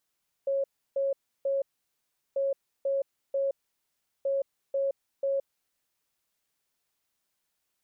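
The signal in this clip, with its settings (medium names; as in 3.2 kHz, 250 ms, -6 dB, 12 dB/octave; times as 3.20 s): beep pattern sine 549 Hz, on 0.17 s, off 0.32 s, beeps 3, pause 0.74 s, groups 3, -24.5 dBFS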